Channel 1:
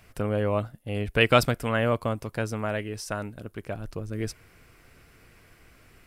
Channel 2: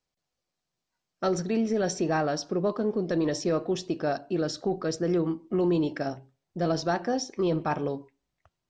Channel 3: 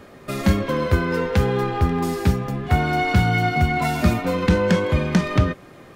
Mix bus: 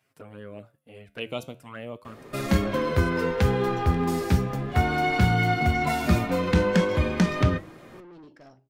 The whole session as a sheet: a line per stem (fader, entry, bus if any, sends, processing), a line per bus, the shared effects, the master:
−6.5 dB, 0.00 s, no send, high-pass filter 150 Hz 12 dB per octave; flanger swept by the level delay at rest 7.8 ms, full sweep at −20 dBFS
−10.5 dB, 2.40 s, no send, soft clipping −30.5 dBFS, distortion −8 dB
+1.5 dB, 2.05 s, no send, mains-hum notches 50/100/150/200 Hz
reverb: not used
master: flanger 0.38 Hz, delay 5.2 ms, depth 8.4 ms, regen −81%

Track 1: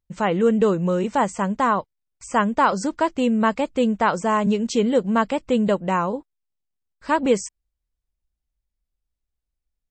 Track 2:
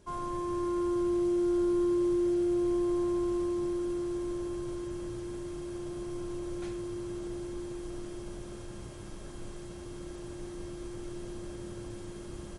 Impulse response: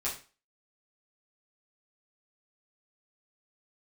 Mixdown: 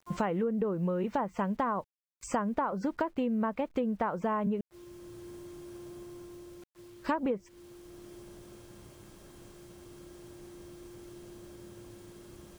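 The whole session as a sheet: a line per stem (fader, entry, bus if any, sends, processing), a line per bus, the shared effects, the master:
+1.0 dB, 0.00 s, muted 0:04.61–0:06.40, no send, treble cut that deepens with the level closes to 1,300 Hz, closed at −14.5 dBFS; noise gate −47 dBFS, range −16 dB; high-shelf EQ 4,600 Hz −8 dB
−7.0 dB, 0.00 s, no send, high-pass filter 68 Hz 6 dB per octave; gate with flip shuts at −29 dBFS, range −40 dB; automatic ducking −8 dB, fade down 1.10 s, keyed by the first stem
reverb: not used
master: bit-depth reduction 10 bits, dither none; downward compressor 16 to 1, threshold −27 dBFS, peak gain reduction 16 dB

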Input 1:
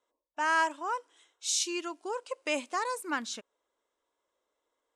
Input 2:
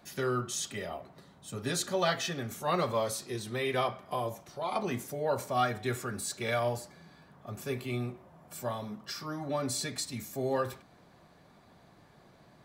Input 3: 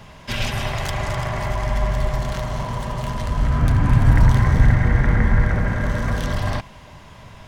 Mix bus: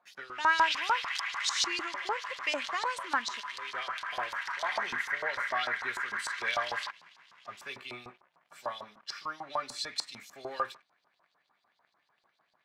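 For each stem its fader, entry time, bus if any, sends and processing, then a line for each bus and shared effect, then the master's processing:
+2.0 dB, 0.00 s, no send, low-shelf EQ 330 Hz +11 dB
0.0 dB, 0.00 s, no send, automatic ducking −17 dB, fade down 0.50 s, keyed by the first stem
−5.5 dB, 0.30 s, no send, high-pass filter 1,100 Hz 24 dB per octave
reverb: not used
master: leveller curve on the samples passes 2; auto-filter band-pass saw up 6.7 Hz 900–5,100 Hz

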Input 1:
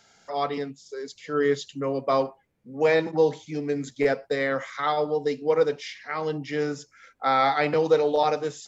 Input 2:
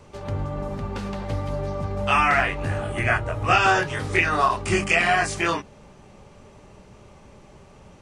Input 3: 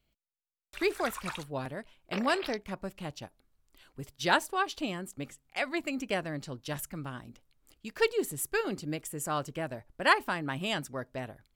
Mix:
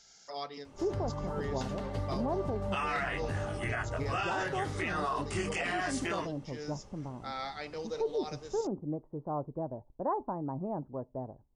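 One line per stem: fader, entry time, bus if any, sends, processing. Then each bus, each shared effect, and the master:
−6.5 dB, 0.00 s, no send, parametric band 5,700 Hz +14.5 dB 1.2 octaves; amplitude modulation by smooth noise, depth 60%; automatic ducking −9 dB, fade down 0.45 s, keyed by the third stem
−8.0 dB, 0.65 s, no send, notch filter 2,400 Hz, Q 11
0.0 dB, 0.00 s, no send, elliptic low-pass filter 940 Hz, stop band 80 dB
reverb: not used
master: brickwall limiter −24 dBFS, peak gain reduction 10.5 dB

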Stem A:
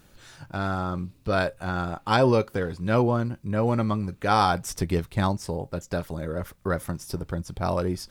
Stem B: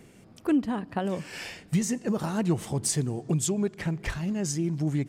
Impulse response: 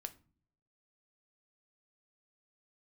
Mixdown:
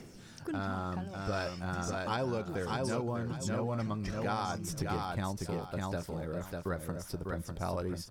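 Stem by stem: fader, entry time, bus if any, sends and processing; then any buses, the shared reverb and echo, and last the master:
−7.5 dB, 0.00 s, no send, echo send −5 dB, no processing
−2.5 dB, 0.00 s, no send, no echo send, parametric band 5,400 Hz +14 dB 0.38 octaves; downward compressor, threshold −28 dBFS, peak gain reduction 9.5 dB; phase shifter 0.37 Hz, delay 1.6 ms, feedback 45%; automatic ducking −9 dB, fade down 0.90 s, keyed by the first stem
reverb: not used
echo: repeating echo 598 ms, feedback 20%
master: downward compressor, threshold −30 dBFS, peak gain reduction 8 dB

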